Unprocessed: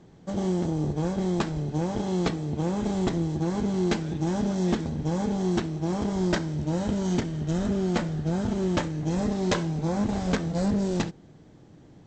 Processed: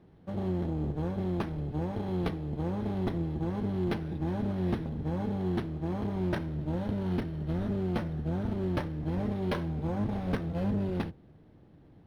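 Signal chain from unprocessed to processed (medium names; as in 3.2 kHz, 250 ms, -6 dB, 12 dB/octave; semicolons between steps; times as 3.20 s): octave divider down 1 oct, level -4 dB; decimation joined by straight lines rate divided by 6×; trim -6 dB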